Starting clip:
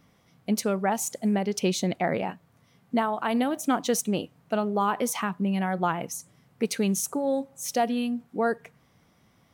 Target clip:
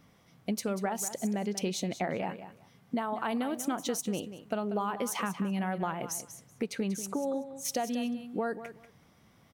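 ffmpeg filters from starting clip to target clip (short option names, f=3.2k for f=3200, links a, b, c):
-filter_complex "[0:a]asettb=1/sr,asplit=3[a][b][c];[a]atrim=end=6.654[d];[b]atrim=start=6.65:end=7.65,asetpts=PTS-STARTPTS,afade=t=in:d=0.004:c=qsin,afade=t=out:st=0.996:d=0.004:c=qsin,highshelf=f=5.5k:g=-10.5[e];[c]atrim=start=7.646[f];[d][e]acrossfade=d=0.004:c1=hsin:c2=qsin[g];[g][f]acrossfade=d=0.004:c1=qsin:c2=hsin,acompressor=threshold=-29dB:ratio=6,aecho=1:1:189|378:0.251|0.0452"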